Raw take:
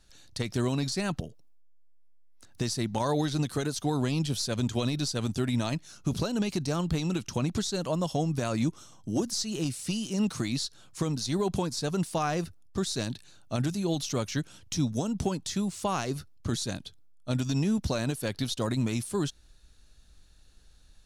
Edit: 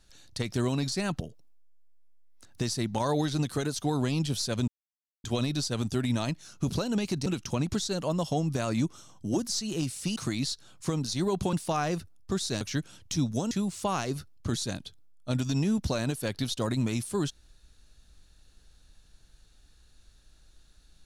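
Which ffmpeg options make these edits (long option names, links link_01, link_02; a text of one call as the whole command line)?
ffmpeg -i in.wav -filter_complex "[0:a]asplit=7[link_01][link_02][link_03][link_04][link_05][link_06][link_07];[link_01]atrim=end=4.68,asetpts=PTS-STARTPTS,afade=type=out:start_time=4.676:duration=0.004:curve=hsin,apad=pad_dur=0.56[link_08];[link_02]atrim=start=4.68:end=6.702,asetpts=PTS-STARTPTS,afade=type=in:duration=0.004:curve=hsin[link_09];[link_03]atrim=start=7.088:end=9.992[link_10];[link_04]atrim=start=10.288:end=11.662[link_11];[link_05]atrim=start=11.988:end=13.072[link_12];[link_06]atrim=start=14.218:end=15.122[link_13];[link_07]atrim=start=15.508[link_14];[link_08][link_09]concat=n=2:v=0:a=1[link_15];[link_15][link_10]acrossfade=duration=0.004:curve1=hsin:curve2=hsin[link_16];[link_16][link_11]acrossfade=duration=0.004:curve1=hsin:curve2=hsin[link_17];[link_17][link_12]acrossfade=duration=0.004:curve1=hsin:curve2=hsin[link_18];[link_18][link_13]acrossfade=duration=0.004:curve1=hsin:curve2=hsin[link_19];[link_19][link_14]acrossfade=duration=0.004:curve1=hsin:curve2=hsin" out.wav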